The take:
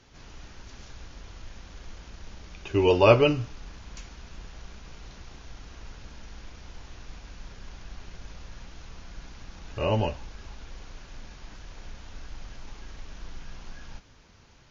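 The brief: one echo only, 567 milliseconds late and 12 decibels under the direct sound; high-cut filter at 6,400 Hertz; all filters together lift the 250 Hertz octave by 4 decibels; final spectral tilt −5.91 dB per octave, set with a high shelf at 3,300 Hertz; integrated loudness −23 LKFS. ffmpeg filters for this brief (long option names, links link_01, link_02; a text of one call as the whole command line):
ffmpeg -i in.wav -af "lowpass=6400,equalizer=frequency=250:width_type=o:gain=5.5,highshelf=frequency=3300:gain=-4.5,aecho=1:1:567:0.251,volume=0.5dB" out.wav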